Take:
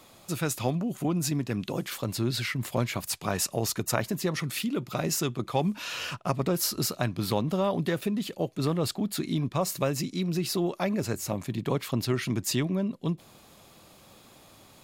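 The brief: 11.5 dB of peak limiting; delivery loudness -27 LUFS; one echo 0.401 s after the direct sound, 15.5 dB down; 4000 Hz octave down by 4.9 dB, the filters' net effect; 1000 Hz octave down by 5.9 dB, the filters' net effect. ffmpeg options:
-af "equalizer=f=1k:t=o:g=-8,equalizer=f=4k:t=o:g=-6,alimiter=limit=-24dB:level=0:latency=1,aecho=1:1:401:0.168,volume=6.5dB"

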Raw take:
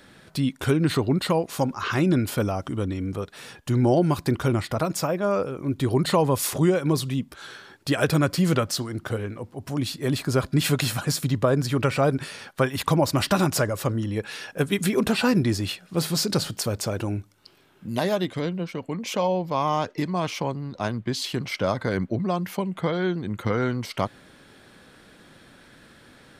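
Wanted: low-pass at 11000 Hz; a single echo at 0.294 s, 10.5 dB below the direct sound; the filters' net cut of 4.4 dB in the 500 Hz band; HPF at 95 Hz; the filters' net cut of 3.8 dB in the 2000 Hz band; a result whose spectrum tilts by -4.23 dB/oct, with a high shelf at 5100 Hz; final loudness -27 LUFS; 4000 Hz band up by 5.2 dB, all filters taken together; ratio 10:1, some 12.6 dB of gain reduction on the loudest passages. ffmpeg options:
-af "highpass=95,lowpass=11k,equalizer=f=500:t=o:g=-5.5,equalizer=f=2k:t=o:g=-7.5,equalizer=f=4k:t=o:g=5,highshelf=f=5.1k:g=7,acompressor=threshold=-31dB:ratio=10,aecho=1:1:294:0.299,volume=8dB"

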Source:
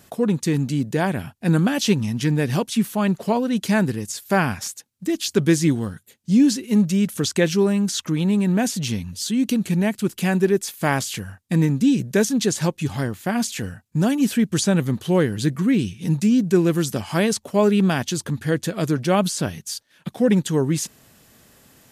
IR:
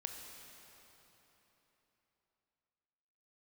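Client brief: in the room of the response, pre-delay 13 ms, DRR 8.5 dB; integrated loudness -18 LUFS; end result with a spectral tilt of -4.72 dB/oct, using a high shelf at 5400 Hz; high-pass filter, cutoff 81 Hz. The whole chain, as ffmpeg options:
-filter_complex "[0:a]highpass=81,highshelf=f=5.4k:g=7.5,asplit=2[a][b];[1:a]atrim=start_sample=2205,adelay=13[c];[b][c]afir=irnorm=-1:irlink=0,volume=-6.5dB[d];[a][d]amix=inputs=2:normalize=0,volume=2.5dB"

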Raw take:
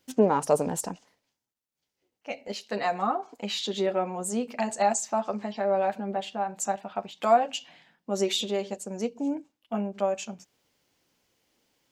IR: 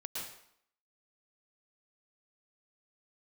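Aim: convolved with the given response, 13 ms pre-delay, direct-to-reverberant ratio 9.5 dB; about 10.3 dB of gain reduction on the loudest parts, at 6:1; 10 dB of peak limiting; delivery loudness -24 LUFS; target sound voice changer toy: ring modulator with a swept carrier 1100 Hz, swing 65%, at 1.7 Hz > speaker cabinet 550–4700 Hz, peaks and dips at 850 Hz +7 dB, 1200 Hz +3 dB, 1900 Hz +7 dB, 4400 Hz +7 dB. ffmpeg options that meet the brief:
-filter_complex "[0:a]acompressor=threshold=-26dB:ratio=6,alimiter=level_in=1.5dB:limit=-24dB:level=0:latency=1,volume=-1.5dB,asplit=2[a][b];[1:a]atrim=start_sample=2205,adelay=13[c];[b][c]afir=irnorm=-1:irlink=0,volume=-10dB[d];[a][d]amix=inputs=2:normalize=0,aeval=exprs='val(0)*sin(2*PI*1100*n/s+1100*0.65/1.7*sin(2*PI*1.7*n/s))':c=same,highpass=550,equalizer=f=850:t=q:w=4:g=7,equalizer=f=1.2k:t=q:w=4:g=3,equalizer=f=1.9k:t=q:w=4:g=7,equalizer=f=4.4k:t=q:w=4:g=7,lowpass=f=4.7k:w=0.5412,lowpass=f=4.7k:w=1.3066,volume=11dB"

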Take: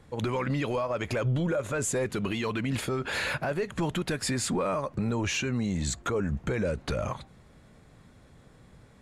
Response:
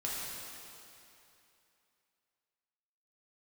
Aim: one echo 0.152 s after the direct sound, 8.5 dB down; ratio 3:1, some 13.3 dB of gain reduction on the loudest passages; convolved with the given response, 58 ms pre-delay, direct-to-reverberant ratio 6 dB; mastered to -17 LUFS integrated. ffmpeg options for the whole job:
-filter_complex "[0:a]acompressor=threshold=-44dB:ratio=3,aecho=1:1:152:0.376,asplit=2[a][b];[1:a]atrim=start_sample=2205,adelay=58[c];[b][c]afir=irnorm=-1:irlink=0,volume=-10dB[d];[a][d]amix=inputs=2:normalize=0,volume=24dB"

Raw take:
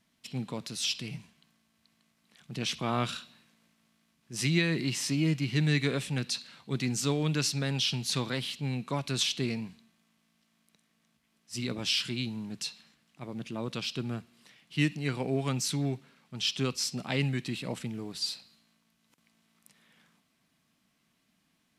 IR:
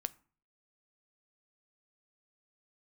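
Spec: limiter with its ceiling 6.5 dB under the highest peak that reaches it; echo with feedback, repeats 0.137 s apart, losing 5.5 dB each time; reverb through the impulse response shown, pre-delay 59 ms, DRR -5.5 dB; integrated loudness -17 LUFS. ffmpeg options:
-filter_complex "[0:a]alimiter=limit=-20dB:level=0:latency=1,aecho=1:1:137|274|411|548|685|822|959:0.531|0.281|0.149|0.079|0.0419|0.0222|0.0118,asplit=2[a][b];[1:a]atrim=start_sample=2205,adelay=59[c];[b][c]afir=irnorm=-1:irlink=0,volume=6.5dB[d];[a][d]amix=inputs=2:normalize=0,volume=7.5dB"

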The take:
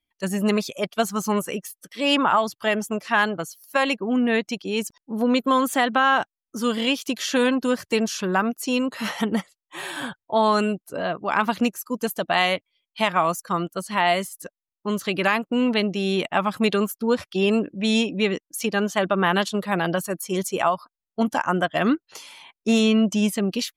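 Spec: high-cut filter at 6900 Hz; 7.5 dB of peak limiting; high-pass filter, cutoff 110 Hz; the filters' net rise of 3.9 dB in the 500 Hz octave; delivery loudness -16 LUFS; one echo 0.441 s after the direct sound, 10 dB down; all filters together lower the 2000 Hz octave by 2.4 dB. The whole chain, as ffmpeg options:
-af "highpass=110,lowpass=6.9k,equalizer=f=500:t=o:g=5,equalizer=f=2k:t=o:g=-3.5,alimiter=limit=-13.5dB:level=0:latency=1,aecho=1:1:441:0.316,volume=8.5dB"

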